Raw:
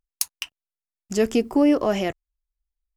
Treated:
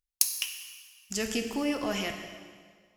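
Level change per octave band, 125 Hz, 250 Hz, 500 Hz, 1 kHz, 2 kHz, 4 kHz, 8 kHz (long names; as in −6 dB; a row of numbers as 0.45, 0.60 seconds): −8.5, −11.5, −12.0, −8.0, −1.5, +0.5, +2.0 decibels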